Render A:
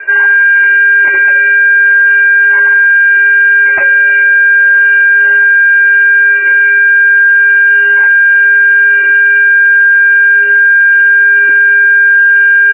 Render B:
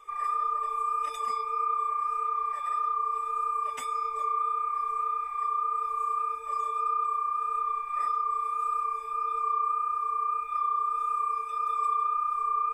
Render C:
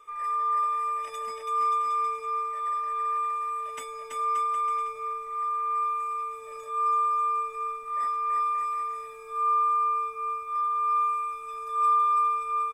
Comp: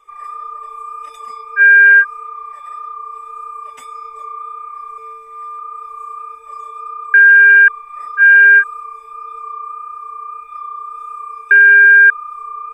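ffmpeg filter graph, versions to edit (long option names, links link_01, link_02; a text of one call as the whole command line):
ffmpeg -i take0.wav -i take1.wav -i take2.wav -filter_complex "[0:a]asplit=4[link_01][link_02][link_03][link_04];[1:a]asplit=6[link_05][link_06][link_07][link_08][link_09][link_10];[link_05]atrim=end=1.62[link_11];[link_01]atrim=start=1.56:end=2.05[link_12];[link_06]atrim=start=1.99:end=4.982[link_13];[2:a]atrim=start=4.978:end=5.592[link_14];[link_07]atrim=start=5.588:end=7.142[link_15];[link_02]atrim=start=7.138:end=7.682[link_16];[link_08]atrim=start=7.678:end=8.23[link_17];[link_03]atrim=start=8.17:end=8.64[link_18];[link_09]atrim=start=8.58:end=11.512[link_19];[link_04]atrim=start=11.508:end=12.102[link_20];[link_10]atrim=start=12.098[link_21];[link_11][link_12]acrossfade=duration=0.06:curve1=tri:curve2=tri[link_22];[link_22][link_13]acrossfade=duration=0.06:curve1=tri:curve2=tri[link_23];[link_23][link_14]acrossfade=duration=0.004:curve1=hsin:curve2=hsin[link_24];[link_24][link_15]acrossfade=duration=0.004:curve1=hsin:curve2=hsin[link_25];[link_25][link_16]acrossfade=duration=0.004:curve1=hsin:curve2=hsin[link_26];[link_26][link_17]acrossfade=duration=0.004:curve1=hsin:curve2=hsin[link_27];[link_27][link_18]acrossfade=duration=0.06:curve1=tri:curve2=tri[link_28];[link_28][link_19]acrossfade=duration=0.06:curve1=tri:curve2=tri[link_29];[link_29][link_20]acrossfade=duration=0.004:curve1=hsin:curve2=hsin[link_30];[link_30][link_21]acrossfade=duration=0.004:curve1=hsin:curve2=hsin" out.wav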